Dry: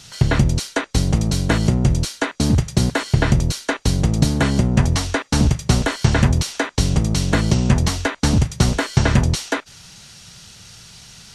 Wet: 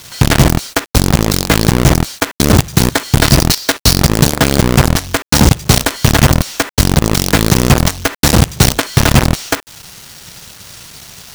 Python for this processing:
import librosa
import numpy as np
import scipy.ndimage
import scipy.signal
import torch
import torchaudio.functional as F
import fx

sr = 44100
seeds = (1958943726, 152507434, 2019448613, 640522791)

y = fx.peak_eq(x, sr, hz=4800.0, db=13.5, octaves=0.77, at=(3.21, 4.13))
y = fx.quant_companded(y, sr, bits=2)
y = F.gain(torch.from_numpy(y), -1.0).numpy()